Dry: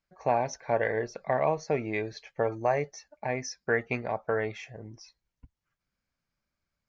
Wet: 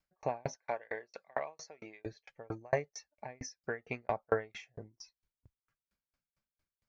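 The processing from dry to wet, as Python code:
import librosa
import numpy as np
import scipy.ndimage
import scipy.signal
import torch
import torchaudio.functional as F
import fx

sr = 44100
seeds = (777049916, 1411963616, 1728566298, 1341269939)

y = fx.highpass(x, sr, hz=900.0, slope=6, at=(0.55, 2.06))
y = fx.tremolo_decay(y, sr, direction='decaying', hz=4.4, depth_db=40)
y = y * librosa.db_to_amplitude(3.0)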